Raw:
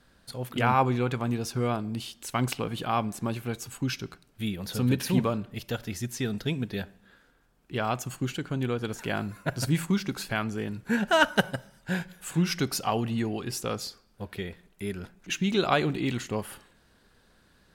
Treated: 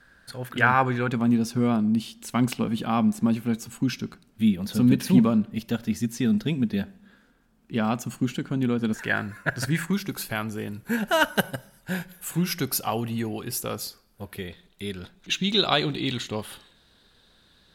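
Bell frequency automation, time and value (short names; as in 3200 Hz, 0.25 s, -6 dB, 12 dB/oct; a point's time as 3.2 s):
bell +13 dB 0.49 oct
1600 Hz
from 1.08 s 220 Hz
from 8.94 s 1700 Hz
from 9.93 s 12000 Hz
from 14.48 s 3700 Hz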